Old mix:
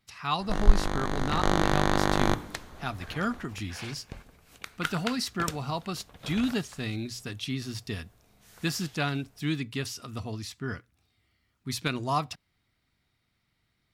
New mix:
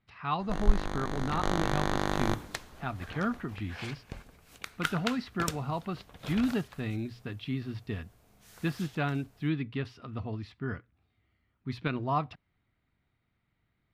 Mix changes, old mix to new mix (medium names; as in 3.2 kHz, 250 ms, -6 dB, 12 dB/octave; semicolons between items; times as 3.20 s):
speech: add distance through air 400 m; first sound -5.0 dB